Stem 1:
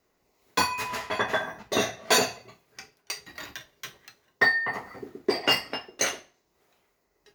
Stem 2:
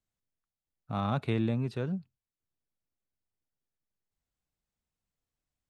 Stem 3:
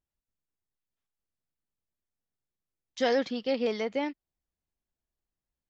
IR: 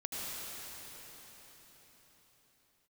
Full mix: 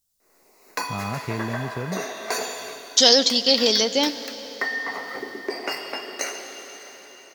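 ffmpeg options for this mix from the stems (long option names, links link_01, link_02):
-filter_complex "[0:a]acompressor=threshold=-44dB:ratio=1.5,highpass=290,adelay=200,volume=-1dB,asplit=2[link_01][link_02];[link_02]volume=-14dB[link_03];[1:a]volume=0dB[link_04];[2:a]aexciter=amount=8.4:drive=7.7:freq=3300,volume=-4dB,asplit=2[link_05][link_06];[link_06]volume=-17dB[link_07];[link_01][link_04]amix=inputs=2:normalize=0,asuperstop=centerf=3300:order=4:qfactor=2.9,acompressor=threshold=-44dB:ratio=2.5,volume=0dB[link_08];[3:a]atrim=start_sample=2205[link_09];[link_03][link_07]amix=inputs=2:normalize=0[link_10];[link_10][link_09]afir=irnorm=-1:irlink=0[link_11];[link_05][link_08][link_11]amix=inputs=3:normalize=0,dynaudnorm=framelen=190:gausssize=3:maxgain=12dB"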